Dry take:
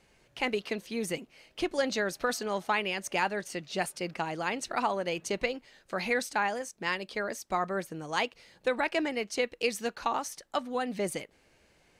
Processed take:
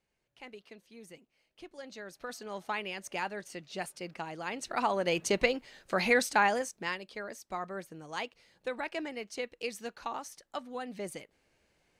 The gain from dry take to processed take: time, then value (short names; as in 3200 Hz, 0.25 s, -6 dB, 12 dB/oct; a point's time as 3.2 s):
1.76 s -18 dB
2.69 s -6.5 dB
4.41 s -6.5 dB
5.15 s +3.5 dB
6.59 s +3.5 dB
7.05 s -7.5 dB